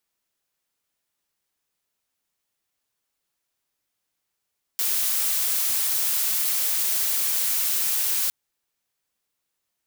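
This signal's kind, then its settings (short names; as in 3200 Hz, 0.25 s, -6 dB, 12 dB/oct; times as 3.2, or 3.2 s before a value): noise blue, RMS -23.5 dBFS 3.51 s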